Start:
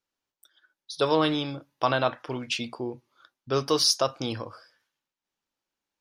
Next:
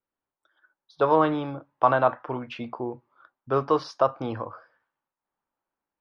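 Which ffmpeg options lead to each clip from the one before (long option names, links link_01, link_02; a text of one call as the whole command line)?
ffmpeg -i in.wav -filter_complex "[0:a]lowpass=1600,acrossover=split=850|1100[link_01][link_02][link_03];[link_02]dynaudnorm=framelen=100:gausssize=7:maxgain=12dB[link_04];[link_01][link_04][link_03]amix=inputs=3:normalize=0" out.wav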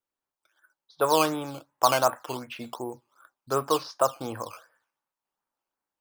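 ffmpeg -i in.wav -filter_complex "[0:a]lowshelf=frequency=430:gain=-6,acrossover=split=2000[link_01][link_02];[link_01]acrusher=samples=8:mix=1:aa=0.000001:lfo=1:lforange=8:lforate=2.7[link_03];[link_03][link_02]amix=inputs=2:normalize=0" out.wav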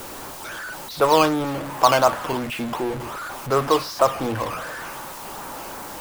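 ffmpeg -i in.wav -filter_complex "[0:a]aeval=exprs='val(0)+0.5*0.0355*sgn(val(0))':channel_layout=same,asplit=2[link_01][link_02];[link_02]adynamicsmooth=sensitivity=6.5:basefreq=530,volume=-2.5dB[link_03];[link_01][link_03]amix=inputs=2:normalize=0" out.wav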